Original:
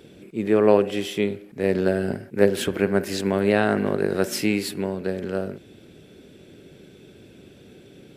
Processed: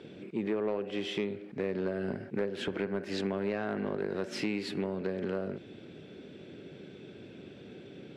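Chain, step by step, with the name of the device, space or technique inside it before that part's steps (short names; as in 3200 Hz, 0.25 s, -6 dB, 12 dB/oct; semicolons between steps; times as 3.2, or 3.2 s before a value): AM radio (BPF 110–3900 Hz; compressor 6:1, threshold -28 dBFS, peak gain reduction 16.5 dB; soft clip -21.5 dBFS, distortion -19 dB)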